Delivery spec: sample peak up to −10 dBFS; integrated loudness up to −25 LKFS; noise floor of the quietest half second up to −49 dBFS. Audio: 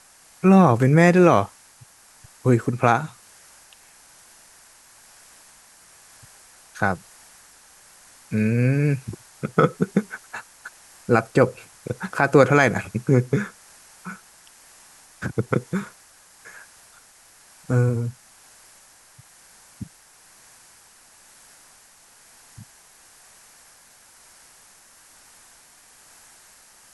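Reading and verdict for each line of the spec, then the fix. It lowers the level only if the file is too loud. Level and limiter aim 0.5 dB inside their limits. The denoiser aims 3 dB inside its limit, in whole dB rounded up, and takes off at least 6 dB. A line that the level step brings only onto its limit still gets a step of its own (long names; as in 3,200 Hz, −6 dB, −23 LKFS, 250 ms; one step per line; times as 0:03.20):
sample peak −2.5 dBFS: out of spec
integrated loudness −20.5 LKFS: out of spec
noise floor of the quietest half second −52 dBFS: in spec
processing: level −5 dB
brickwall limiter −10.5 dBFS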